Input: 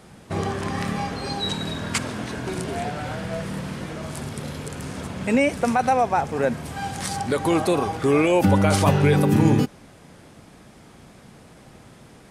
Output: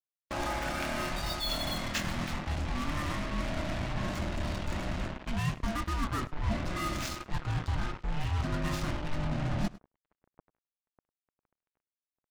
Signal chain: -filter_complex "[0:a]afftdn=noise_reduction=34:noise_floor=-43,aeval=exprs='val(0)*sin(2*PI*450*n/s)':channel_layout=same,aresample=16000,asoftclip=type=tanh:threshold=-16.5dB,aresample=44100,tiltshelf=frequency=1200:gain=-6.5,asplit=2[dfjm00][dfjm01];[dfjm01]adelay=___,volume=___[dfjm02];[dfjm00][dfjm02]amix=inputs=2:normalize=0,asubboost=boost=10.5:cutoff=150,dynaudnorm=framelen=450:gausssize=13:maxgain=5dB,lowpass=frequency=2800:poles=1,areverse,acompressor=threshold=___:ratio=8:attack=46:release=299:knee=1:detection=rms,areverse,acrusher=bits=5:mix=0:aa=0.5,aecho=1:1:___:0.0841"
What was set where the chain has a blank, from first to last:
25, -8dB, -30dB, 102